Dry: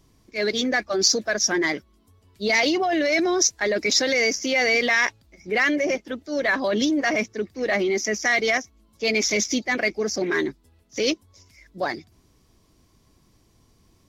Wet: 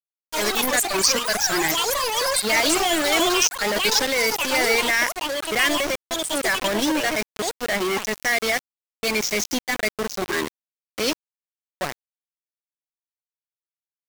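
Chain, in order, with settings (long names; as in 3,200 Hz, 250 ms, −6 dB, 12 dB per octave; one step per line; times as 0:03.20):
centre clipping without the shift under −21.5 dBFS
delay with pitch and tempo change per echo 82 ms, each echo +7 semitones, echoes 3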